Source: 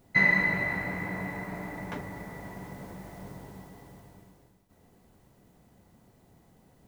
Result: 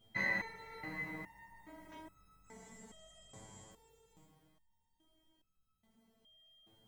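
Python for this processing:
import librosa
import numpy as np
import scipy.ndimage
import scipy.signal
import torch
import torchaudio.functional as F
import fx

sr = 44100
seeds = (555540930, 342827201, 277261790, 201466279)

y = fx.chorus_voices(x, sr, voices=6, hz=0.31, base_ms=23, depth_ms=2.3, mix_pct=30)
y = y + 10.0 ** (-64.0 / 20.0) * np.sin(2.0 * np.pi * 3200.0 * np.arange(len(y)) / sr)
y = fx.lowpass_res(y, sr, hz=7500.0, q=14.0, at=(2.44, 3.71))
y = y + 10.0 ** (-11.5 / 20.0) * np.pad(y, (int(544 * sr / 1000.0), 0))[:len(y)]
y = fx.resonator_held(y, sr, hz=2.4, low_hz=110.0, high_hz=1300.0)
y = F.gain(torch.from_numpy(y), 3.5).numpy()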